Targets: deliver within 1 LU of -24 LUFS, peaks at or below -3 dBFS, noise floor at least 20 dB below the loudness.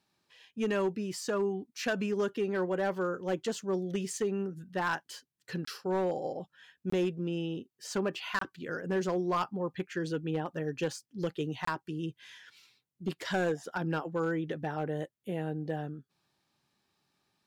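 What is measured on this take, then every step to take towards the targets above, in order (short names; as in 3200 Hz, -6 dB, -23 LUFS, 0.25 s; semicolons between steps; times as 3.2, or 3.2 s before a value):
clipped 0.7%; flat tops at -24.0 dBFS; dropouts 4; longest dropout 24 ms; loudness -34.0 LUFS; peak -24.0 dBFS; loudness target -24.0 LUFS
-> clip repair -24 dBFS; interpolate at 5.65/6.9/8.39/11.65, 24 ms; gain +10 dB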